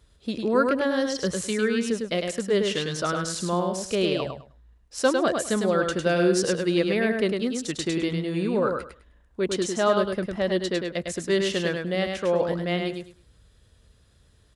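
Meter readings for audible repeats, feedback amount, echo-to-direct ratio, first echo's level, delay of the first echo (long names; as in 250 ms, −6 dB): 3, 20%, −4.5 dB, −4.5 dB, 103 ms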